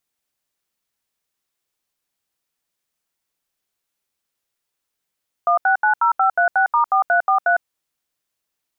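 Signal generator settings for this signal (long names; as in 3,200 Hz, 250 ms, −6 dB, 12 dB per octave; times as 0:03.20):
touch tones "1690536*4343", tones 105 ms, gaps 76 ms, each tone −15.5 dBFS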